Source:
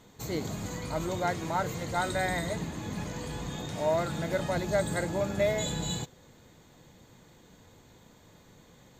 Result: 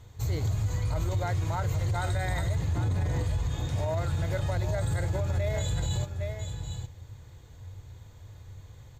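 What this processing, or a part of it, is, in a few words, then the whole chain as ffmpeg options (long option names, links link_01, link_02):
car stereo with a boomy subwoofer: -filter_complex "[0:a]asettb=1/sr,asplit=3[link_01][link_02][link_03];[link_01]atrim=end=2.754[link_04];[link_02]atrim=start=2.75:end=3.24,asetpts=PTS-STARTPTS,afade=type=in:duration=0.004:curve=qsin,afade=type=out:start_time=0.486:duration=0.004:curve=qsin,equalizer=frequency=320:width_type=o:width=3:gain=10[link_05];[link_03]atrim=start=3.236[link_06];[link_04][link_05]acrossfade=duration=0.004:curve1=hsin:curve2=qsin[link_07];[link_07][link_06]acrossfade=duration=0.004:curve1=qsin:curve2=hsin,lowshelf=frequency=140:width_type=q:width=3:gain=13,aecho=1:1:810:0.316,alimiter=limit=-19.5dB:level=0:latency=1:release=37,volume=-1.5dB"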